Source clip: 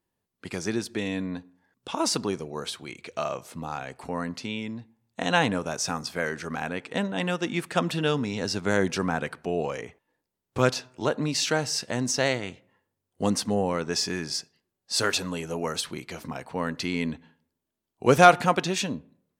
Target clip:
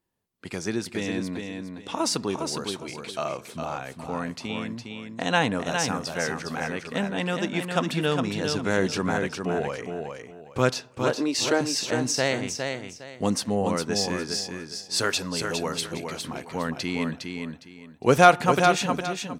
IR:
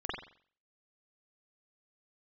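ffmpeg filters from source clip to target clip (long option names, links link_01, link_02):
-filter_complex "[0:a]asettb=1/sr,asplit=3[link_01][link_02][link_03];[link_01]atrim=end=11.144[link_04];[link_02]atrim=start=11.14:end=11.61,asetpts=PTS-STARTPTS,afade=type=in:duration=0.004:curve=qsin,afade=type=out:start_time=0.466:duration=0.004:curve=qsin,lowshelf=frequency=240:width_type=q:width=3:gain=-10.5[link_05];[link_03]atrim=start=11.606[link_06];[link_04][link_05]acrossfade=duration=0.004:curve1=hsin:curve2=qsin[link_07];[link_07][link_06]acrossfade=duration=0.004:curve1=qsin:curve2=hsin,asplit=2[link_08][link_09];[link_09]aecho=0:1:409|818|1227:0.531|0.133|0.0332[link_10];[link_08][link_10]amix=inputs=2:normalize=0"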